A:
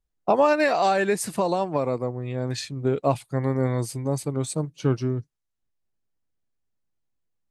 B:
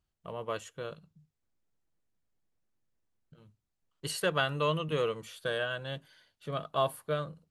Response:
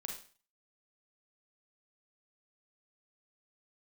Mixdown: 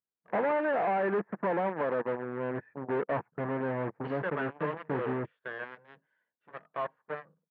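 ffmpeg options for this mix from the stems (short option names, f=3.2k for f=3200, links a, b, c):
-filter_complex "[0:a]lowpass=f=1.6k:w=0.5412,lowpass=f=1.6k:w=1.3066,adelay=50,volume=-4dB[a];[1:a]volume=-6.5dB[b];[a][b]amix=inputs=2:normalize=0,aeval=exprs='0.0282*(cos(1*acos(clip(val(0)/0.0282,-1,1)))-cos(1*PI/2))+0.0126*(cos(3*acos(clip(val(0)/0.0282,-1,1)))-cos(3*PI/2))':c=same,highpass=190,equalizer=f=200:t=q:w=4:g=4,equalizer=f=460:t=q:w=4:g=4,equalizer=f=940:t=q:w=4:g=5,equalizer=f=1.7k:t=q:w=4:g=6,lowpass=f=2.1k:w=0.5412,lowpass=f=2.1k:w=1.3066"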